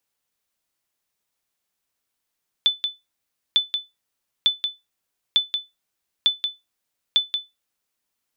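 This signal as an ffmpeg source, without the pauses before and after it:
-f lavfi -i "aevalsrc='0.355*(sin(2*PI*3500*mod(t,0.9))*exp(-6.91*mod(t,0.9)/0.2)+0.447*sin(2*PI*3500*max(mod(t,0.9)-0.18,0))*exp(-6.91*max(mod(t,0.9)-0.18,0)/0.2))':d=5.4:s=44100"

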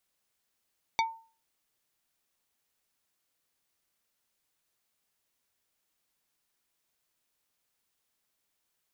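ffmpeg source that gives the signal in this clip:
-f lavfi -i "aevalsrc='0.0841*pow(10,-3*t/0.39)*sin(2*PI*903*t)+0.0596*pow(10,-3*t/0.13)*sin(2*PI*2257.5*t)+0.0422*pow(10,-3*t/0.074)*sin(2*PI*3612*t)+0.0299*pow(10,-3*t/0.057)*sin(2*PI*4515*t)+0.0211*pow(10,-3*t/0.041)*sin(2*PI*5869.5*t)':d=0.45:s=44100"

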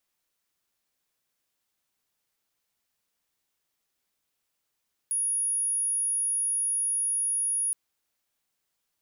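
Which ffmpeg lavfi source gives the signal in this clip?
-f lavfi -i "aevalsrc='0.0596*sin(2*PI*10400*t)':d=2.62:s=44100"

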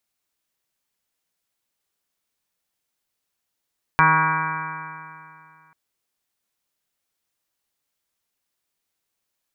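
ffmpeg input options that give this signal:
-f lavfi -i "aevalsrc='0.0841*pow(10,-3*t/2.44)*sin(2*PI*157.05*t)+0.0251*pow(10,-3*t/2.44)*sin(2*PI*314.4*t)+0.015*pow(10,-3*t/2.44)*sin(2*PI*472.35*t)+0.0106*pow(10,-3*t/2.44)*sin(2*PI*631.21*t)+0.0376*pow(10,-3*t/2.44)*sin(2*PI*791.26*t)+0.15*pow(10,-3*t/2.44)*sin(2*PI*952.79*t)+0.15*pow(10,-3*t/2.44)*sin(2*PI*1116.1*t)+0.0562*pow(10,-3*t/2.44)*sin(2*PI*1281.46*t)+0.106*pow(10,-3*t/2.44)*sin(2*PI*1449.16*t)+0.106*pow(10,-3*t/2.44)*sin(2*PI*1619.46*t)+0.0224*pow(10,-3*t/2.44)*sin(2*PI*1792.62*t)+0.0335*pow(10,-3*t/2.44)*sin(2*PI*1968.9*t)+0.00944*pow(10,-3*t/2.44)*sin(2*PI*2148.54*t)+0.0668*pow(10,-3*t/2.44)*sin(2*PI*2331.79*t)':d=1.74:s=44100"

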